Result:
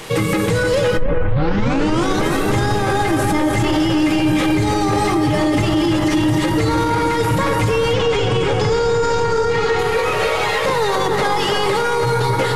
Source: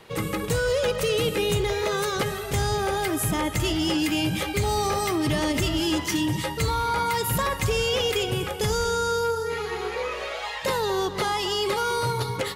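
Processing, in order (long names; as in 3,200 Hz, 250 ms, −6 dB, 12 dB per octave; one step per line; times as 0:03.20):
linear delta modulator 64 kbit/s, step −41 dBFS
0:00.97: tape start 1.21 s
0:03.19–0:03.59: comb filter 3.4 ms, depth 69%
0:07.93–0:09.79: low-pass filter 7,400 Hz 24 dB per octave
bucket-brigade delay 301 ms, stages 4,096, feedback 71%, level −5.5 dB
convolution reverb RT60 0.30 s, pre-delay 4 ms, DRR 5.5 dB
boost into a limiter +20.5 dB
level −8 dB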